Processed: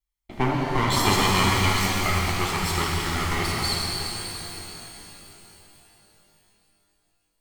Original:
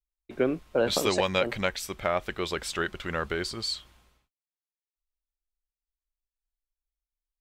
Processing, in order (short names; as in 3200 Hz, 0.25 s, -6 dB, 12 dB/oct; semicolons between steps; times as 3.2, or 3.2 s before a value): minimum comb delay 0.94 ms; shimmer reverb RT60 3.7 s, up +12 st, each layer -8 dB, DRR -3.5 dB; gain +3 dB